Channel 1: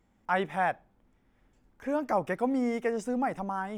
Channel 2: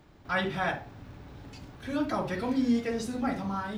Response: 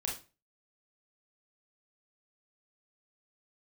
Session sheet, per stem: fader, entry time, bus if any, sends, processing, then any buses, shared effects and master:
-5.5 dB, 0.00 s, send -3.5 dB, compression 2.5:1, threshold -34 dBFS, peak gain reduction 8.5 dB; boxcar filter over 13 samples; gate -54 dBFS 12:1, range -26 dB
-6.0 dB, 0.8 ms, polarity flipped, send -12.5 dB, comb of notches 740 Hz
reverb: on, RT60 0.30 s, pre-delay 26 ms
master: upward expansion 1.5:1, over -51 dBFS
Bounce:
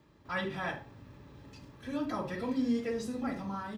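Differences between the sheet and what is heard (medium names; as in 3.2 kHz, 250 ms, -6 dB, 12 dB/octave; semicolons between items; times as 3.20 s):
stem 1 -5.5 dB -> -17.5 dB; master: missing upward expansion 1.5:1, over -51 dBFS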